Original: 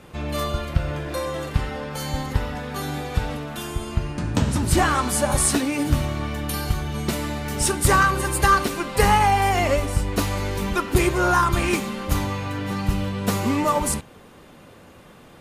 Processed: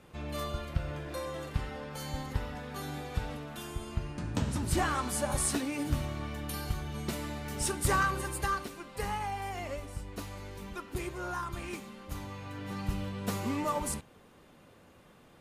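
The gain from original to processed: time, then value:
8.15 s -10.5 dB
8.76 s -18 dB
12.1 s -18 dB
12.8 s -11 dB

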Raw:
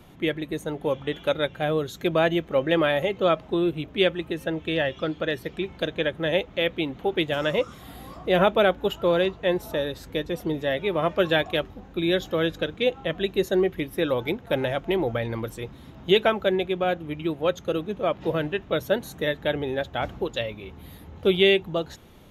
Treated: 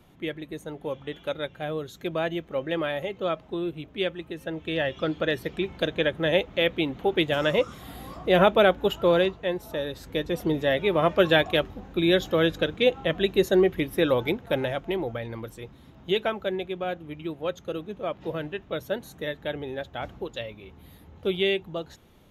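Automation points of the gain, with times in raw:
4.34 s -6.5 dB
5.13 s +1 dB
9.18 s +1 dB
9.55 s -5.5 dB
10.43 s +2 dB
14.14 s +2 dB
15.19 s -6 dB

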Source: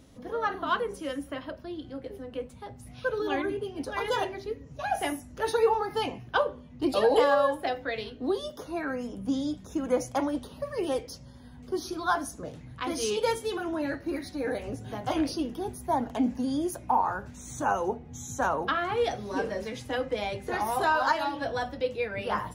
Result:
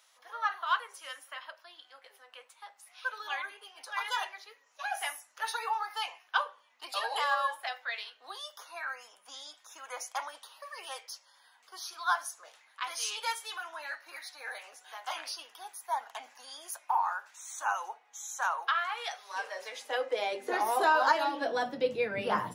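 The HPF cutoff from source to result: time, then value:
HPF 24 dB/oct
19.27 s 930 Hz
20.41 s 320 Hz
21.32 s 320 Hz
21.94 s 130 Hz

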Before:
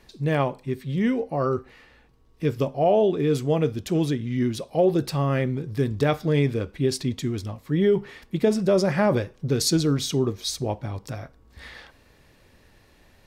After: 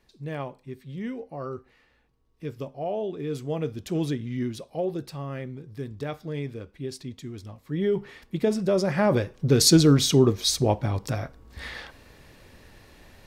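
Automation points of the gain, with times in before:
3.05 s -10.5 dB
4.13 s -3 dB
5.16 s -11 dB
7.25 s -11 dB
8.06 s -3 dB
8.85 s -3 dB
9.65 s +5 dB

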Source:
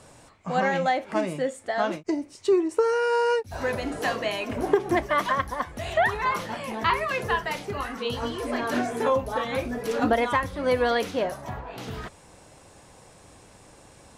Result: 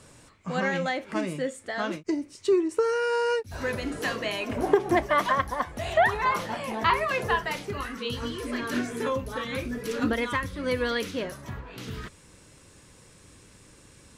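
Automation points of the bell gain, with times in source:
bell 740 Hz 0.78 oct
4.11 s -9 dB
4.65 s +1.5 dB
7.27 s +1.5 dB
7.79 s -9 dB
8.03 s -15 dB

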